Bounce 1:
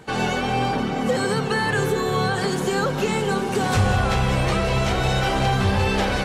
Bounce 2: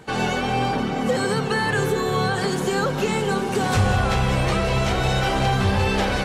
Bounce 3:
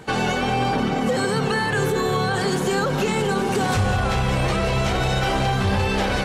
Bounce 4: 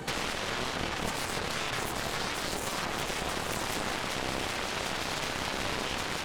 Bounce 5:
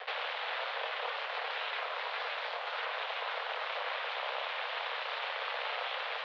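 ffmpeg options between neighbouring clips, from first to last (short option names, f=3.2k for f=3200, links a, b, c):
-af anull
-af "alimiter=limit=-16.5dB:level=0:latency=1,volume=3.5dB"
-filter_complex "[0:a]acrossover=split=190|1800[a][b][c];[a]acompressor=threshold=-36dB:ratio=4[d];[b]acompressor=threshold=-35dB:ratio=4[e];[c]acompressor=threshold=-40dB:ratio=4[f];[d][e][f]amix=inputs=3:normalize=0,aeval=exprs='0.106*(cos(1*acos(clip(val(0)/0.106,-1,1)))-cos(1*PI/2))+0.0422*(cos(2*acos(clip(val(0)/0.106,-1,1)))-cos(2*PI/2))+0.0531*(cos(7*acos(clip(val(0)/0.106,-1,1)))-cos(7*PI/2))':c=same,volume=-4dB"
-af "acrusher=bits=5:mix=0:aa=0.000001,highpass=f=180:t=q:w=0.5412,highpass=f=180:t=q:w=1.307,lowpass=f=3.5k:t=q:w=0.5176,lowpass=f=3.5k:t=q:w=0.7071,lowpass=f=3.5k:t=q:w=1.932,afreqshift=290,volume=-3.5dB"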